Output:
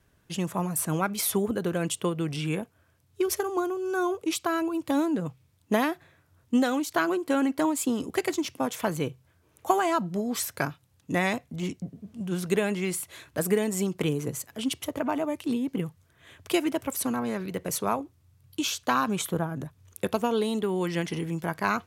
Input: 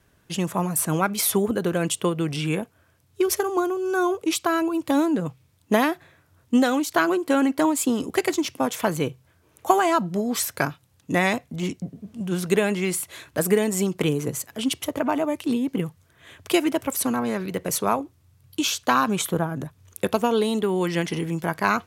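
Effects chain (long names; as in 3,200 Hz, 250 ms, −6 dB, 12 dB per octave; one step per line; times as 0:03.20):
low-shelf EQ 130 Hz +3.5 dB
level −5 dB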